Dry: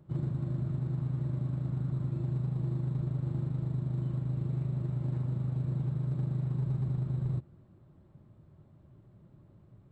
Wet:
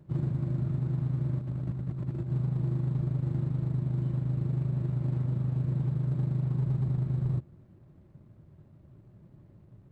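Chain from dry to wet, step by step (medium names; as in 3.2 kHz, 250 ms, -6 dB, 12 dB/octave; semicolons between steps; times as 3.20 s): median filter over 41 samples; 1.41–2.30 s: compressor with a negative ratio -35 dBFS, ratio -0.5; trim +3 dB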